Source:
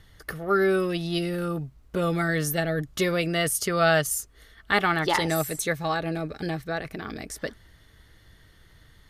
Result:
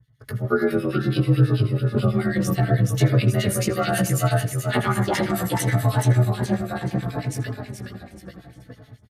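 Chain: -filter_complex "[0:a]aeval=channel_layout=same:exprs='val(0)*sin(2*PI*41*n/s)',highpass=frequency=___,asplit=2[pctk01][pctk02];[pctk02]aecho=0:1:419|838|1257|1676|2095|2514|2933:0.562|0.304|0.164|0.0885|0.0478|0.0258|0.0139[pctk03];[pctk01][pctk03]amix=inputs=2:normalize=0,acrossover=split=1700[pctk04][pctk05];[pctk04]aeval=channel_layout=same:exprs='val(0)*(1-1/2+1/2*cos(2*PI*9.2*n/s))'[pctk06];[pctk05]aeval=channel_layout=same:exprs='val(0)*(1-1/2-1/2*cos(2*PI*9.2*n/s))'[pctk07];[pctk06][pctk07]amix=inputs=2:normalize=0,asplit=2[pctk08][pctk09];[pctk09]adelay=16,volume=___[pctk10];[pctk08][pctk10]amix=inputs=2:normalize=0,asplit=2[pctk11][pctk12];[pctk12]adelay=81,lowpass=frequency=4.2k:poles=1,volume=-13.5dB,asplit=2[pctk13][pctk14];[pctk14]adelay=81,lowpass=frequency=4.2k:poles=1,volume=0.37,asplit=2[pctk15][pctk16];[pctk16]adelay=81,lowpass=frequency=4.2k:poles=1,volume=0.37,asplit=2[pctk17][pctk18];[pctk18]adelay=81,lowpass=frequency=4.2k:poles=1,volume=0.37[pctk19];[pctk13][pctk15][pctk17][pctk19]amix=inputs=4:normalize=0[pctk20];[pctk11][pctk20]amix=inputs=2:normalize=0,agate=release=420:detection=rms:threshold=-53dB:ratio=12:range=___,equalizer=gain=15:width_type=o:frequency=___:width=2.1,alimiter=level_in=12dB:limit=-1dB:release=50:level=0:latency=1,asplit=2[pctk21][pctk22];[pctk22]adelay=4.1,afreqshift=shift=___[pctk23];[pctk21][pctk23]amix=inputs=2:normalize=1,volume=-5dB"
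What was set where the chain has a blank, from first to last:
55, -6.5dB, -16dB, 110, -0.69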